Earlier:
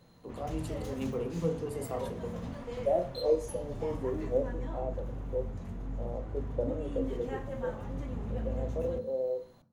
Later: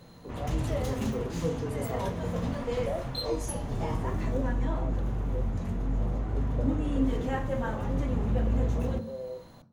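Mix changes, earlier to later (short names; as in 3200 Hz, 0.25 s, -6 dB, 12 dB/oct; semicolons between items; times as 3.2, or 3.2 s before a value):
second voice -6.0 dB; background +8.5 dB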